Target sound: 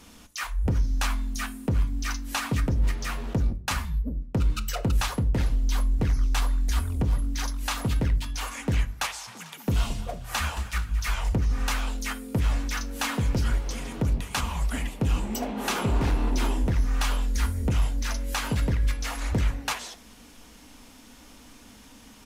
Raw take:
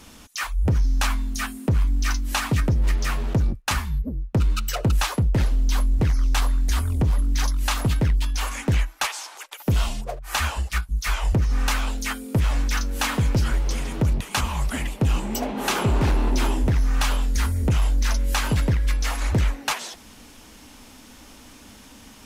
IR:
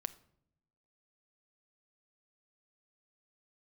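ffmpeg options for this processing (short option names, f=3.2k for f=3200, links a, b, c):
-filter_complex "[0:a]asplit=3[a][b][c];[a]afade=t=out:st=9.27:d=0.02[d];[b]asplit=6[e][f][g][h][i][j];[f]adelay=222,afreqshift=37,volume=-15dB[k];[g]adelay=444,afreqshift=74,volume=-20.4dB[l];[h]adelay=666,afreqshift=111,volume=-25.7dB[m];[i]adelay=888,afreqshift=148,volume=-31.1dB[n];[j]adelay=1110,afreqshift=185,volume=-36.4dB[o];[e][k][l][m][n][o]amix=inputs=6:normalize=0,afade=t=in:st=9.27:d=0.02,afade=t=out:st=11.28:d=0.02[p];[c]afade=t=in:st=11.28:d=0.02[q];[d][p][q]amix=inputs=3:normalize=0[r];[1:a]atrim=start_sample=2205,asetrate=66150,aresample=44100[s];[r][s]afir=irnorm=-1:irlink=0,volume=1dB"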